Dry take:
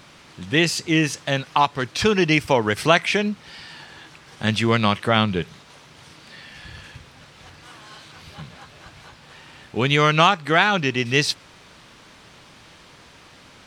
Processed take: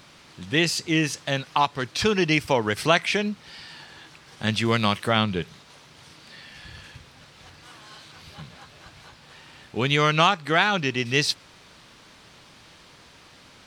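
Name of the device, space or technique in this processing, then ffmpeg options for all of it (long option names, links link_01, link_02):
presence and air boost: -filter_complex "[0:a]equalizer=frequency=4400:width_type=o:width=0.77:gain=2.5,highshelf=frequency=11000:gain=4,asettb=1/sr,asplit=3[link_01][link_02][link_03];[link_01]atrim=end=4.654[link_04];[link_02]atrim=start=4.65:end=5.13,asetpts=PTS-STARTPTS,afade=type=in:duration=0.004:curve=qsin,afade=type=out:start_time=0.476:duration=0.004:curve=qsin,highshelf=frequency=9000:gain=10.5[link_05];[link_03]atrim=start=5.126[link_06];[link_04][link_05]acrossfade=duration=0.004:curve1=hsin:curve2=qsin[link_07];[link_07][link_06]acrossfade=duration=0.004:curve1=qsin:curve2=hsin,volume=-3.5dB"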